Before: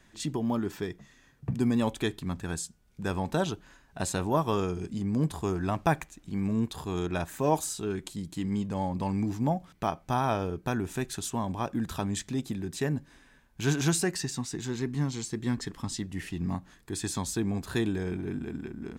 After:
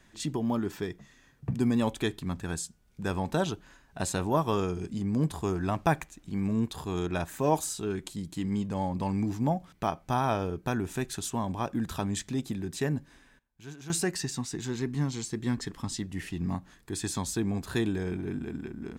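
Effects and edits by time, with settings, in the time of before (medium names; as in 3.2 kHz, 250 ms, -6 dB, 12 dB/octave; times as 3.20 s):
12.93–14.36 s: dip -17.5 dB, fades 0.46 s logarithmic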